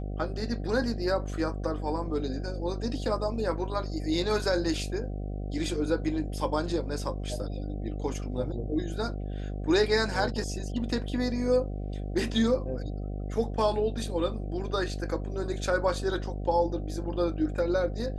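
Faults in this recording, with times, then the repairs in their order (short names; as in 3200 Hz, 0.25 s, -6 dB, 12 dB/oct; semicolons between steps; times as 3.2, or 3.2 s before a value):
buzz 50 Hz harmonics 15 -34 dBFS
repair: de-hum 50 Hz, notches 15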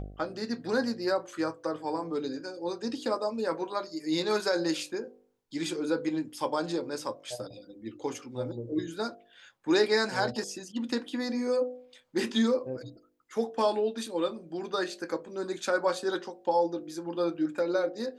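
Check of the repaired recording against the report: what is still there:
none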